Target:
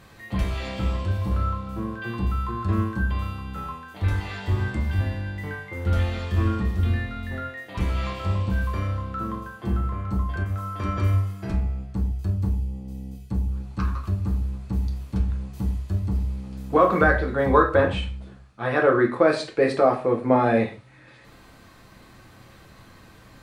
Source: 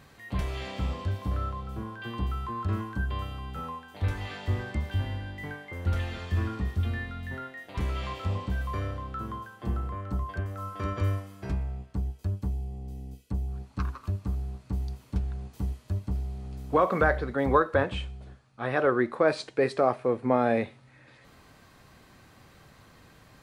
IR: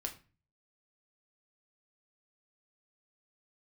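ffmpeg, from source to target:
-filter_complex "[1:a]atrim=start_sample=2205,afade=t=out:st=0.18:d=0.01,atrim=end_sample=8379,asetrate=36603,aresample=44100[s0];[0:a][s0]afir=irnorm=-1:irlink=0,volume=1.68"

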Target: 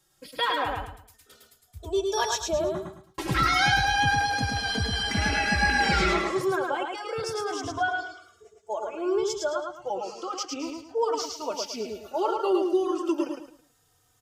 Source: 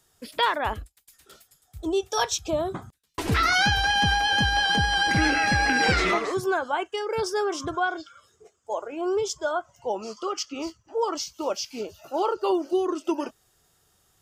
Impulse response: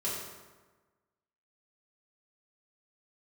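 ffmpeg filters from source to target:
-filter_complex "[0:a]aecho=1:1:108|216|324|432:0.668|0.201|0.0602|0.018,asplit=2[s0][s1];[s1]adelay=3.2,afreqshift=-0.31[s2];[s0][s2]amix=inputs=2:normalize=1"

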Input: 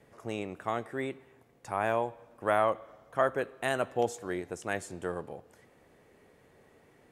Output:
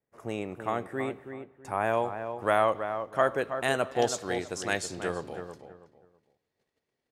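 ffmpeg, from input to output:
-filter_complex "[0:a]agate=range=0.0398:threshold=0.00158:ratio=16:detection=peak,asetnsamples=n=441:p=0,asendcmd='1.93 equalizer g 4.5;3.92 equalizer g 13.5',equalizer=f=4600:t=o:w=1.4:g=-4,asplit=2[s0][s1];[s1]adelay=325,lowpass=f=1800:p=1,volume=0.398,asplit=2[s2][s3];[s3]adelay=325,lowpass=f=1800:p=1,volume=0.28,asplit=2[s4][s5];[s5]adelay=325,lowpass=f=1800:p=1,volume=0.28[s6];[s0][s2][s4][s6]amix=inputs=4:normalize=0,volume=1.26"

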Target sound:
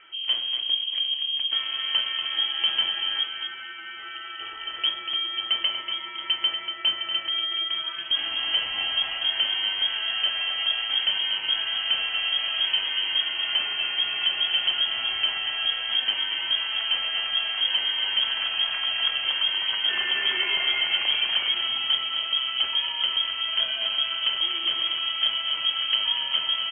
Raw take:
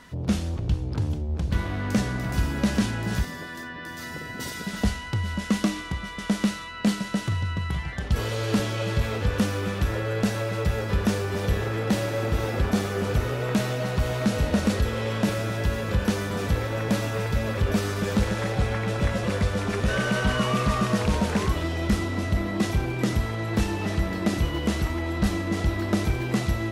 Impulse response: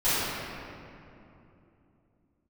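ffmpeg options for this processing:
-filter_complex "[0:a]lowpass=f=2800:t=q:w=0.5098,lowpass=f=2800:t=q:w=0.6013,lowpass=f=2800:t=q:w=0.9,lowpass=f=2800:t=q:w=2.563,afreqshift=-3300,aecho=1:1:239:0.422,asplit=2[s0][s1];[1:a]atrim=start_sample=2205[s2];[s1][s2]afir=irnorm=-1:irlink=0,volume=0.0299[s3];[s0][s3]amix=inputs=2:normalize=0,volume=0.794"

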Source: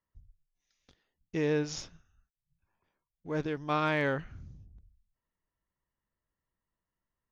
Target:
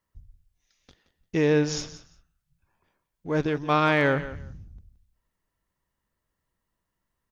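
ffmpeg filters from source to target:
-af "aecho=1:1:173|346:0.178|0.032,volume=2.37"

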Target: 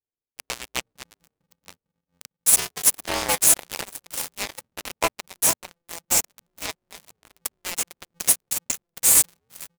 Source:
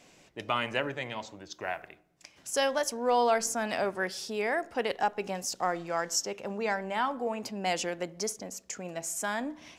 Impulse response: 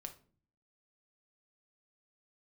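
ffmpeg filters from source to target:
-filter_complex "[0:a]aderivative,asplit=2[s0][s1];[s1]highpass=f=720:p=1,volume=11.2,asoftclip=type=tanh:threshold=0.133[s2];[s0][s2]amix=inputs=2:normalize=0,lowpass=f=3000:p=1,volume=0.501,aecho=1:1:452|904|1356|1808|2260:0.335|0.147|0.0648|0.0285|0.0126,asplit=2[s3][s4];[s4]acompressor=threshold=0.00501:ratio=8,volume=0.841[s5];[s3][s5]amix=inputs=2:normalize=0,aexciter=amount=8.9:drive=4:freq=2300,firequalizer=gain_entry='entry(160,0);entry(260,12);entry(850,11);entry(1300,-29);entry(2200,-1);entry(3400,-21);entry(9200,-4)':delay=0.05:min_phase=1,acrossover=split=100[s6][s7];[s7]acrusher=bits=2:mix=0:aa=0.5[s8];[s6][s8]amix=inputs=2:normalize=0,aeval=exprs='val(0)*sgn(sin(2*PI*170*n/s))':c=same,volume=1.41"

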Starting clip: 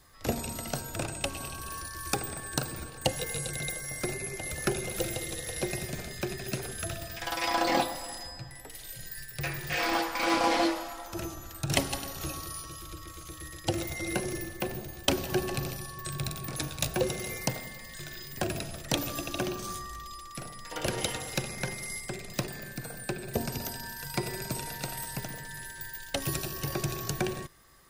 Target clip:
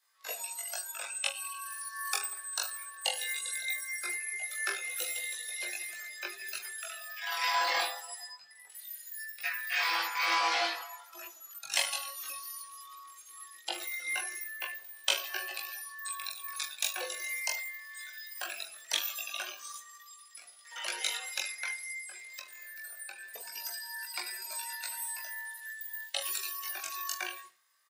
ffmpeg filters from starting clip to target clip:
-filter_complex "[0:a]highpass=1200,aecho=1:1:20|45|76.25|115.3|164.1:0.631|0.398|0.251|0.158|0.1,flanger=delay=18:depth=3.9:speed=0.2,asettb=1/sr,asplit=3[s0][s1][s2];[s0]atrim=end=21.774[s3];[s1]atrim=start=21.77:end=23.56,asetpts=PTS-STARTPTS,afade=t=in:d=0.004:c=qsin,afade=t=out:st=1.786:d=0.004:c=qsin,acompressor=threshold=0.01:ratio=6[s4];[s2]atrim=start=23.556[s5];[s3][s4]acrossfade=d=0.004:c1=hsin:c2=qsin[s6];[s6][s5]acrossfade=d=0.004:c1=qsin:c2=hsin,afftdn=nr=13:nf=-43,asoftclip=type=tanh:threshold=0.141,volume=1.5"

